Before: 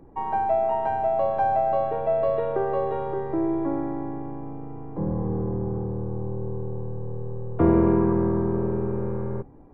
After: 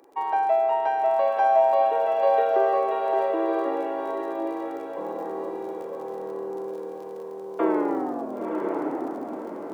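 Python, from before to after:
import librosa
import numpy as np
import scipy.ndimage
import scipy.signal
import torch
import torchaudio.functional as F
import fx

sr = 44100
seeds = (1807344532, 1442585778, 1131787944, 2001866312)

y = fx.tape_stop_end(x, sr, length_s=2.16)
y = scipy.signal.sosfilt(scipy.signal.butter(4, 360.0, 'highpass', fs=sr, output='sos'), y)
y = fx.high_shelf(y, sr, hz=2100.0, db=11.0)
y = fx.dmg_crackle(y, sr, seeds[0], per_s=41.0, level_db=-40.0)
y = fx.echo_diffused(y, sr, ms=997, feedback_pct=42, wet_db=-3.0)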